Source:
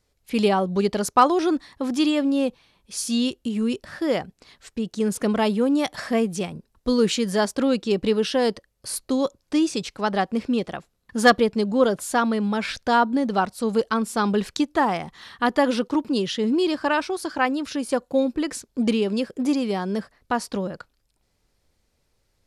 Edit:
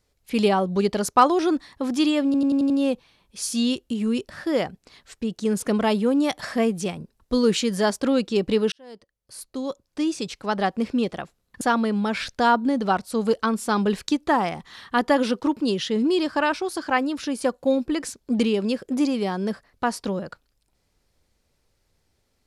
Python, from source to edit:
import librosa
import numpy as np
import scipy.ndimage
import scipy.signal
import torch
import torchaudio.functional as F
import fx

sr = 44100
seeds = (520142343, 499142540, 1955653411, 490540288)

y = fx.edit(x, sr, fx.stutter(start_s=2.25, slice_s=0.09, count=6),
    fx.fade_in_span(start_s=8.27, length_s=2.03),
    fx.cut(start_s=11.16, length_s=0.93), tone=tone)